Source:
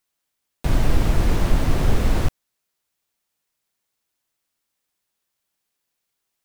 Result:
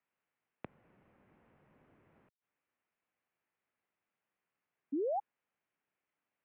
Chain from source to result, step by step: flipped gate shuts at -18 dBFS, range -36 dB; painted sound rise, 4.92–5.2, 380–980 Hz -30 dBFS; mistuned SSB -120 Hz 240–2700 Hz; gain -3.5 dB

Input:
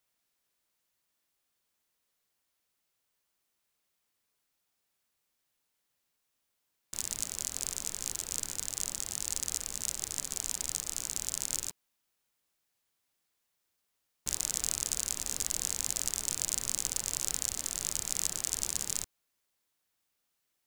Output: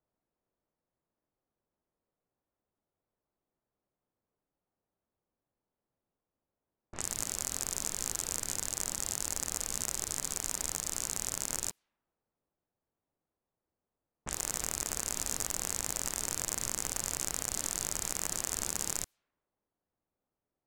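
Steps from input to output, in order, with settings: tracing distortion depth 0.022 ms; low-pass opened by the level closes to 680 Hz, open at -36.5 dBFS; limiter -18.5 dBFS, peak gain reduction 9 dB; gain +4.5 dB

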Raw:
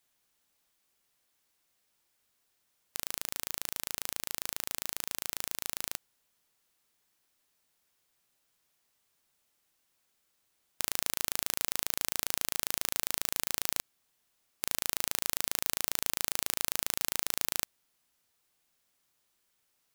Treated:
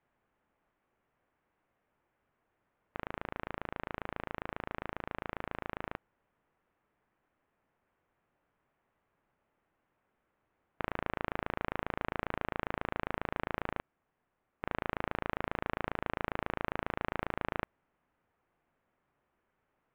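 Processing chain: Gaussian blur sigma 4.7 samples; 13.68–14.66 upward expander 1.5:1, over -48 dBFS; gain +8 dB

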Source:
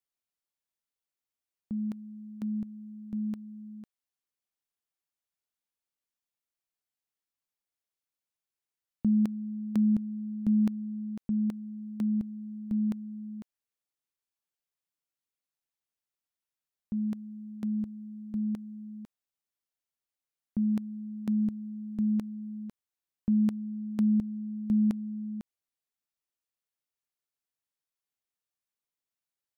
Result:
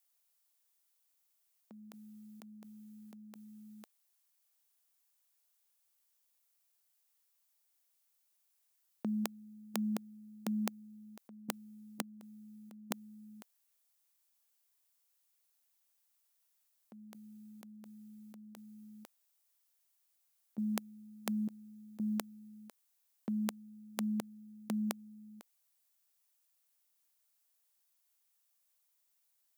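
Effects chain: differentiator; level quantiser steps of 19 dB; HPF 140 Hz; bell 640 Hz +14 dB 2.6 oct; gain +18 dB

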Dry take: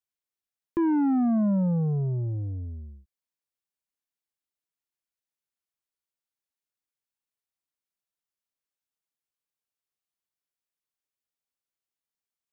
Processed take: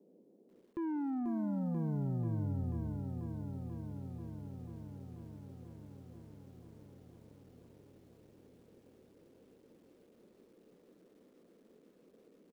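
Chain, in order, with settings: band noise 180–510 Hz -61 dBFS; reverse; compressor 12:1, threshold -32 dBFS, peak gain reduction 10 dB; reverse; outdoor echo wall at 32 m, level -20 dB; lo-fi delay 0.488 s, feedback 80%, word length 11-bit, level -6.5 dB; gain -3.5 dB

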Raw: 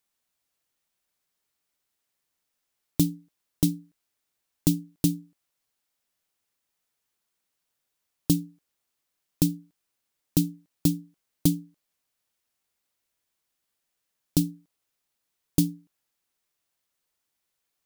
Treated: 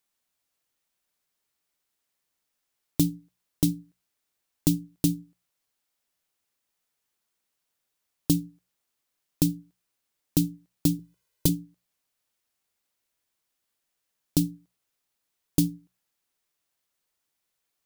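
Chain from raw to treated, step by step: notches 60/120/180 Hz; 10.99–11.49 comb 2 ms, depth 91%

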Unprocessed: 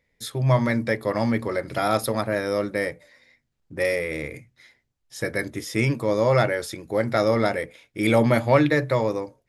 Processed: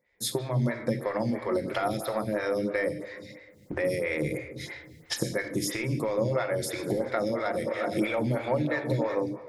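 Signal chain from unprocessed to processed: 6.55–9.15 regenerating reverse delay 0.191 s, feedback 70%, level -13 dB; recorder AGC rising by 23 dB/s; HPF 56 Hz; compressor, threshold -23 dBFS, peak gain reduction 11.5 dB; shoebox room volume 1200 m³, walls mixed, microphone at 0.9 m; photocell phaser 3 Hz

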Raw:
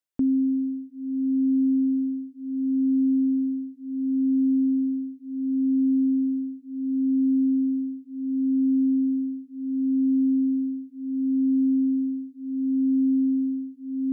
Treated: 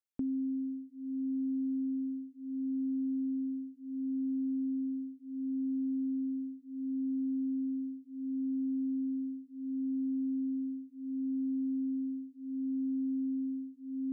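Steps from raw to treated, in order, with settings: compressor 5:1, threshold -23 dBFS, peak gain reduction 3.5 dB; gain -8.5 dB

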